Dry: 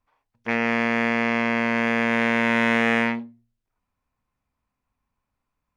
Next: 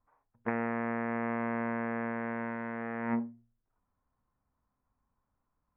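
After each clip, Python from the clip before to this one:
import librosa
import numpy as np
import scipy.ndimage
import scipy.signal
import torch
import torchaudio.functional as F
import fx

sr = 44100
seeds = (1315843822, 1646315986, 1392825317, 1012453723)

y = scipy.signal.sosfilt(scipy.signal.butter(4, 1600.0, 'lowpass', fs=sr, output='sos'), x)
y = fx.over_compress(y, sr, threshold_db=-27.0, ratio=-0.5)
y = y * librosa.db_to_amplitude(-5.5)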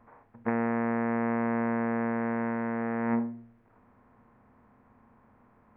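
y = fx.bin_compress(x, sr, power=0.6)
y = fx.high_shelf(y, sr, hz=2200.0, db=-9.0)
y = y * librosa.db_to_amplitude(3.0)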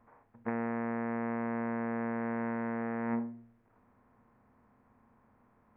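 y = fx.rider(x, sr, range_db=10, speed_s=0.5)
y = y * librosa.db_to_amplitude(-5.0)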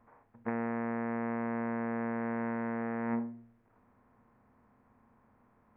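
y = x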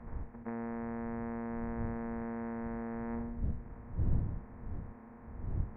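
y = fx.bin_compress(x, sr, power=0.4)
y = fx.dmg_wind(y, sr, seeds[0], corner_hz=87.0, level_db=-32.0)
y = fx.lowpass(y, sr, hz=1300.0, slope=6)
y = y * librosa.db_to_amplitude(-7.0)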